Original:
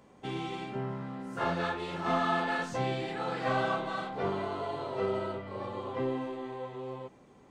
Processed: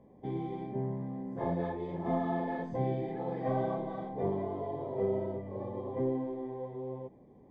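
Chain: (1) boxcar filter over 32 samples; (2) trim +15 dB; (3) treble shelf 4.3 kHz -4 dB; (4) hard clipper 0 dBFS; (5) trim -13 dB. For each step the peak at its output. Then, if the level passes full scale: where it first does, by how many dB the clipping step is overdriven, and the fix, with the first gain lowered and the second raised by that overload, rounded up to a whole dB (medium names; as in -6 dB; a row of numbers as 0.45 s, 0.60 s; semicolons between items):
-21.0 dBFS, -6.0 dBFS, -6.0 dBFS, -6.0 dBFS, -19.0 dBFS; nothing clips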